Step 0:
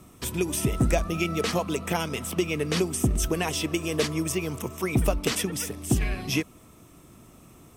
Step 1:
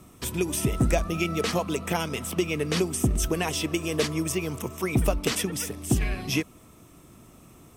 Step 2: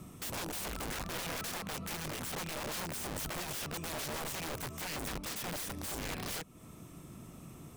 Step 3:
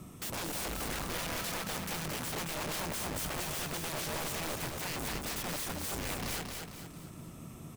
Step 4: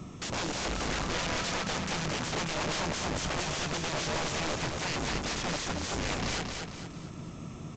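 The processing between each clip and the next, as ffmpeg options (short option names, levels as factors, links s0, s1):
-af anull
-af "equalizer=f=160:w=1.6:g=6.5,acompressor=threshold=0.02:ratio=3,aeval=exprs='(mod(42.2*val(0)+1,2)-1)/42.2':c=same,volume=0.841"
-af "aecho=1:1:226|452|678|904|1130:0.596|0.25|0.105|0.0441|0.0185,volume=1.12"
-af "aresample=16000,aresample=44100,volume=1.88"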